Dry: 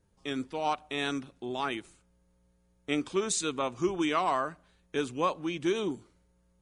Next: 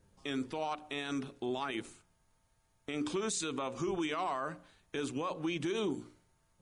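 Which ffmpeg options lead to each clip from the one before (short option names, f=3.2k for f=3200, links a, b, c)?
-af "bandreject=f=60:t=h:w=6,bandreject=f=120:t=h:w=6,bandreject=f=180:t=h:w=6,bandreject=f=240:t=h:w=6,bandreject=f=300:t=h:w=6,bandreject=f=360:t=h:w=6,bandreject=f=420:t=h:w=6,bandreject=f=480:t=h:w=6,bandreject=f=540:t=h:w=6,acompressor=threshold=-31dB:ratio=6,alimiter=level_in=6.5dB:limit=-24dB:level=0:latency=1:release=39,volume=-6.5dB,volume=4dB"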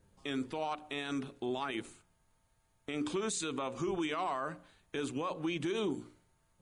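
-af "equalizer=f=5.5k:t=o:w=0.35:g=-4.5"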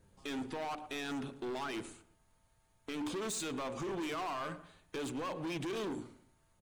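-filter_complex "[0:a]asoftclip=type=hard:threshold=-37.5dB,asplit=2[a][b];[b]adelay=112,lowpass=f=1.9k:p=1,volume=-14.5dB,asplit=2[c][d];[d]adelay=112,lowpass=f=1.9k:p=1,volume=0.34,asplit=2[e][f];[f]adelay=112,lowpass=f=1.9k:p=1,volume=0.34[g];[a][c][e][g]amix=inputs=4:normalize=0,volume=1.5dB"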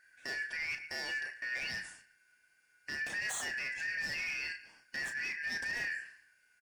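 -filter_complex "[0:a]afftfilt=real='real(if(lt(b,272),68*(eq(floor(b/68),0)*2+eq(floor(b/68),1)*0+eq(floor(b/68),2)*3+eq(floor(b/68),3)*1)+mod(b,68),b),0)':imag='imag(if(lt(b,272),68*(eq(floor(b/68),0)*2+eq(floor(b/68),1)*0+eq(floor(b/68),2)*3+eq(floor(b/68),3)*1)+mod(b,68),b),0)':win_size=2048:overlap=0.75,asplit=2[a][b];[b]adelay=32,volume=-8.5dB[c];[a][c]amix=inputs=2:normalize=0"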